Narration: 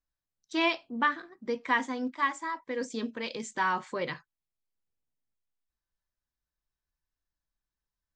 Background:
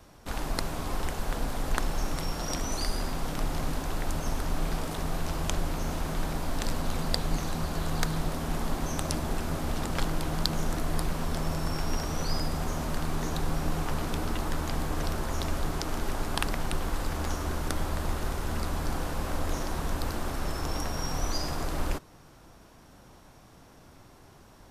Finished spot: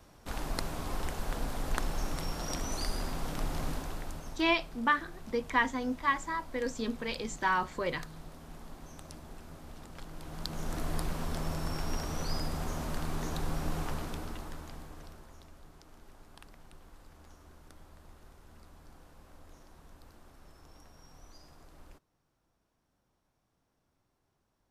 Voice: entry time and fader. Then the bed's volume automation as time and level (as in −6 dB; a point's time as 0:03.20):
3.85 s, −0.5 dB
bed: 0:03.71 −4 dB
0:04.57 −17.5 dB
0:10.04 −17.5 dB
0:10.81 −4.5 dB
0:13.85 −4.5 dB
0:15.51 −24.5 dB